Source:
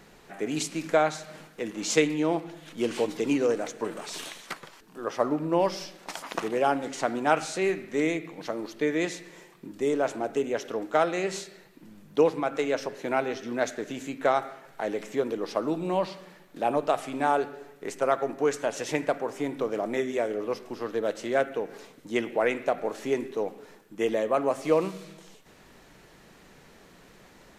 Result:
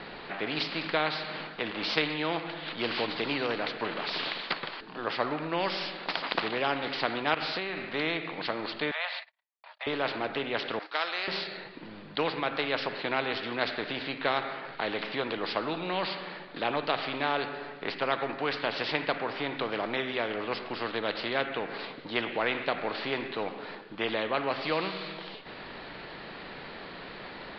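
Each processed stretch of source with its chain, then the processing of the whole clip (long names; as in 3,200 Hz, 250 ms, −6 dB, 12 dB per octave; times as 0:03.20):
0:07.34–0:07.94: downward compressor, threshold −30 dBFS + one half of a high-frequency compander decoder only
0:08.91–0:09.87: noise gate −44 dBFS, range −59 dB + treble cut that deepens with the level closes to 2,400 Hz, closed at −25 dBFS + Butterworth high-pass 620 Hz 72 dB per octave
0:10.79–0:11.28: high-pass filter 1,200 Hz + noise gate −56 dBFS, range −8 dB + high shelf with overshoot 4,400 Hz +7.5 dB, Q 1.5
whole clip: Butterworth low-pass 4,700 Hz 96 dB per octave; low-shelf EQ 190 Hz −10.5 dB; every bin compressed towards the loudest bin 2 to 1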